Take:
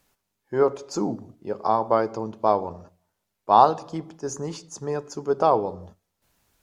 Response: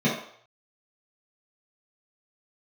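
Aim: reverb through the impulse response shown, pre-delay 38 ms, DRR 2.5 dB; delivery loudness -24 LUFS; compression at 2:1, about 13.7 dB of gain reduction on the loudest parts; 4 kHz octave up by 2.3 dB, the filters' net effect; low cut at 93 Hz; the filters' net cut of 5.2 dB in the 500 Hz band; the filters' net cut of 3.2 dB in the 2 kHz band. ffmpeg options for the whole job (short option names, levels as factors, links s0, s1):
-filter_complex "[0:a]highpass=93,equalizer=f=500:t=o:g=-6.5,equalizer=f=2000:t=o:g=-5,equalizer=f=4000:t=o:g=4,acompressor=threshold=0.0126:ratio=2,asplit=2[s0][s1];[1:a]atrim=start_sample=2205,adelay=38[s2];[s1][s2]afir=irnorm=-1:irlink=0,volume=0.141[s3];[s0][s3]amix=inputs=2:normalize=0,volume=2.66"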